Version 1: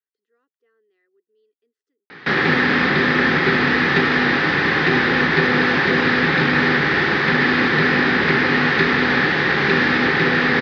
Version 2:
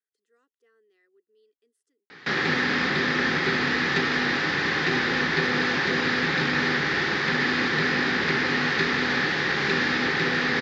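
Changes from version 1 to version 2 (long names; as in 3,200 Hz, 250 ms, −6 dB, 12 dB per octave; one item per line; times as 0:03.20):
background −8.5 dB
master: remove high-frequency loss of the air 190 metres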